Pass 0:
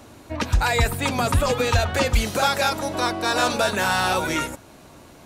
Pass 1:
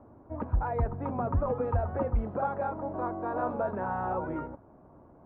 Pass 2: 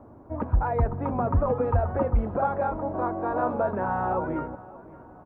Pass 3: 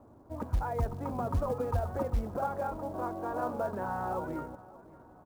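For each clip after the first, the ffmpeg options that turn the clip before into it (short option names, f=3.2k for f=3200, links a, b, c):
-af "lowpass=f=1.1k:w=0.5412,lowpass=f=1.1k:w=1.3066,volume=-7.5dB"
-af "aecho=1:1:575|1150|1725:0.1|0.045|0.0202,volume=5dB"
-af "acrusher=bits=7:mode=log:mix=0:aa=0.000001,volume=-7.5dB"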